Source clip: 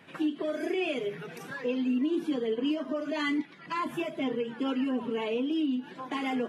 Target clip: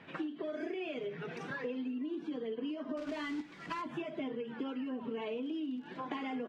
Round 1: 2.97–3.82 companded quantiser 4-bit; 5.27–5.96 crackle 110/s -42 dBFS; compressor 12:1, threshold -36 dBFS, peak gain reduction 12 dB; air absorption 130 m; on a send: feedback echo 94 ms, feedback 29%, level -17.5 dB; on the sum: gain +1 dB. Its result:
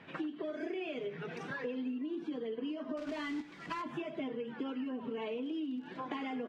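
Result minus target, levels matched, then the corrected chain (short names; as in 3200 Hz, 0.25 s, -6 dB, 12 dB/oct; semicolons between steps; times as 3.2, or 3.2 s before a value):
echo 37 ms late
2.97–3.82 companded quantiser 4-bit; 5.27–5.96 crackle 110/s -42 dBFS; compressor 12:1, threshold -36 dBFS, peak gain reduction 12 dB; air absorption 130 m; on a send: feedback echo 57 ms, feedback 29%, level -17.5 dB; on the sum: gain +1 dB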